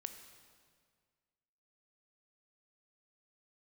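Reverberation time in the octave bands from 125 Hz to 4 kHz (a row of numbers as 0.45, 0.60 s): 2.0, 1.9, 1.9, 1.8, 1.7, 1.6 s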